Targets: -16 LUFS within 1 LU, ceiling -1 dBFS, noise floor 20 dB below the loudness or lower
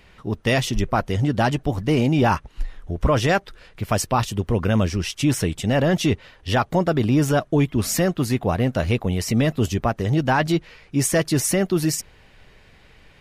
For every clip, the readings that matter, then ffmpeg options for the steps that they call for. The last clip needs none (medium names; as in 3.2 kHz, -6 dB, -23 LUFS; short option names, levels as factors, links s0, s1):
loudness -21.5 LUFS; peak level -9.0 dBFS; loudness target -16.0 LUFS
-> -af "volume=1.88"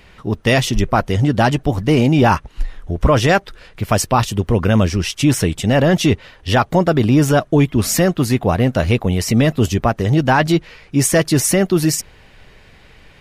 loudness -16.0 LUFS; peak level -3.5 dBFS; noise floor -47 dBFS